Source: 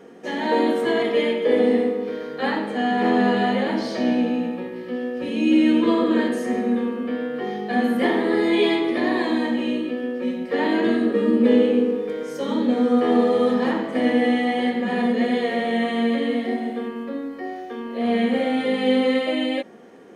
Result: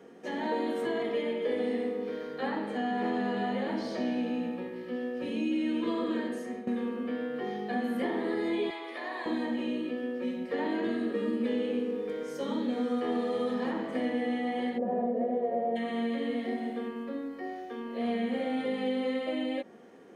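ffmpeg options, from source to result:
ffmpeg -i in.wav -filter_complex "[0:a]asettb=1/sr,asplit=3[link_01][link_02][link_03];[link_01]atrim=end=8.704[link_04];[link_02]atrim=start=8.7:end=9.26,asetpts=PTS-STARTPTS,afade=type=in:duration=0.004:curve=qsin,afade=type=out:start_time=0.556:duration=0.004:curve=qsin,highpass=830[link_05];[link_03]atrim=start=9.256[link_06];[link_04][link_05]acrossfade=duration=0.004:curve1=hsin:curve2=qsin[link_07];[link_07][link_06]acrossfade=duration=0.004:curve1=qsin:curve2=hsin,asplit=3[link_08][link_09][link_10];[link_08]afade=type=out:start_time=14.77:duration=0.02[link_11];[link_09]lowpass=frequency=620:width_type=q:width=5.5,afade=type=in:start_time=14.77:duration=0.02,afade=type=out:start_time=15.75:duration=0.02[link_12];[link_10]afade=type=in:start_time=15.75:duration=0.02[link_13];[link_11][link_12][link_13]amix=inputs=3:normalize=0,asplit=2[link_14][link_15];[link_14]atrim=end=6.67,asetpts=PTS-STARTPTS,afade=type=out:start_time=6.12:duration=0.55:silence=0.223872[link_16];[link_15]atrim=start=6.67,asetpts=PTS-STARTPTS,afade=type=in:duration=0.004:curve=hsin:silence=0.223872[link_17];[link_16][link_17]concat=n=2:v=0:a=1,acrossover=split=99|1500[link_18][link_19][link_20];[link_18]acompressor=threshold=-53dB:ratio=4[link_21];[link_19]acompressor=threshold=-21dB:ratio=4[link_22];[link_20]acompressor=threshold=-38dB:ratio=4[link_23];[link_21][link_22][link_23]amix=inputs=3:normalize=0,volume=-7dB" out.wav

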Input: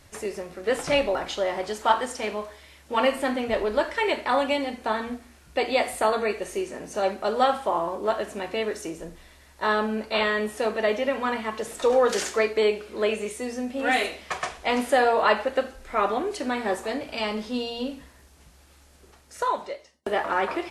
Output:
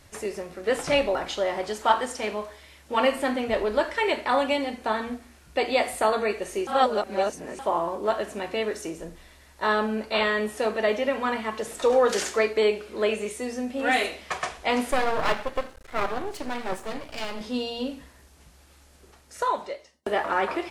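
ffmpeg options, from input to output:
ffmpeg -i in.wav -filter_complex "[0:a]asettb=1/sr,asplit=3[link_01][link_02][link_03];[link_01]atrim=end=14.914[link_04];[link_02]atrim=start=14.91:end=17.41,asetpts=PTS-STARTPTS,afade=type=in:duration=0.004:curve=qsin,afade=type=out:start_time=2.496:duration=0.004:curve=qsin,aeval=exprs='max(val(0),0)':channel_layout=same[link_05];[link_03]atrim=start=17.406[link_06];[link_04][link_05]acrossfade=duration=0.004:curve1=hsin:curve2=qsin[link_07];[link_07][link_06]acrossfade=duration=0.004:curve1=qsin:curve2=hsin,asplit=3[link_08][link_09][link_10];[link_08]atrim=end=6.672[link_11];[link_09]atrim=start=6.668:end=7.592,asetpts=PTS-STARTPTS,areverse[link_12];[link_10]atrim=start=7.588[link_13];[link_11][link_12]acrossfade=duration=0.004:curve1=hsin:curve2=hsin[link_14];[link_14][link_13]acrossfade=duration=0.004:curve1=hsin:curve2=hsin" out.wav

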